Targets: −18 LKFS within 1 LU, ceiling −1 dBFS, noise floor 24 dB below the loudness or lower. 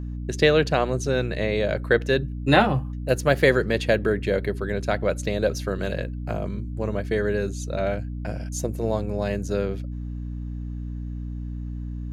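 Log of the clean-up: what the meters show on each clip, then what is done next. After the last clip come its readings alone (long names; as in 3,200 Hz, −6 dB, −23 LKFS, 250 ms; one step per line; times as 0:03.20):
mains hum 60 Hz; hum harmonics up to 300 Hz; level of the hum −29 dBFS; integrated loudness −25.0 LKFS; sample peak −3.5 dBFS; target loudness −18.0 LKFS
→ mains-hum notches 60/120/180/240/300 Hz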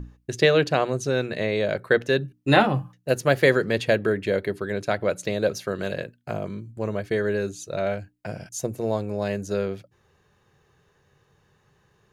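mains hum none found; integrated loudness −24.5 LKFS; sample peak −2.5 dBFS; target loudness −18.0 LKFS
→ level +6.5 dB
brickwall limiter −1 dBFS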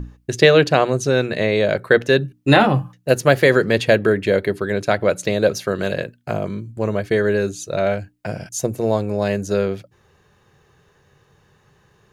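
integrated loudness −18.5 LKFS; sample peak −1.0 dBFS; background noise floor −59 dBFS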